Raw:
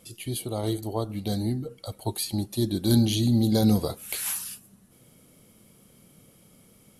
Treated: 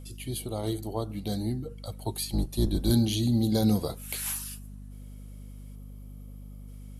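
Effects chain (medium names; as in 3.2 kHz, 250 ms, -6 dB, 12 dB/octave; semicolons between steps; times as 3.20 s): 2.17–2.91 s: octave divider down 2 oct, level +2 dB; 5.75–6.68 s: time-frequency box 1.3–11 kHz -6 dB; hum 50 Hz, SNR 13 dB; trim -3 dB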